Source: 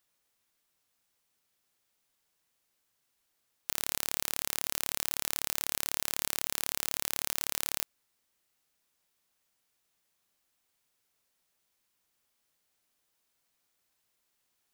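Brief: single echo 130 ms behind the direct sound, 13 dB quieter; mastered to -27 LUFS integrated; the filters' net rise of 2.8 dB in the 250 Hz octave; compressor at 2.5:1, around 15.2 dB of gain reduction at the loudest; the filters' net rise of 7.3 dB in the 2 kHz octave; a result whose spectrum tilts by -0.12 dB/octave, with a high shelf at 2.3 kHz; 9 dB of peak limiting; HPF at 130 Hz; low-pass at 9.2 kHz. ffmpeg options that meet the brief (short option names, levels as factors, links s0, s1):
-af "highpass=130,lowpass=9200,equalizer=f=250:t=o:g=4,equalizer=f=2000:t=o:g=5.5,highshelf=f=2300:g=6.5,acompressor=threshold=0.00447:ratio=2.5,alimiter=level_in=1.19:limit=0.0631:level=0:latency=1,volume=0.841,aecho=1:1:130:0.224,volume=15.8"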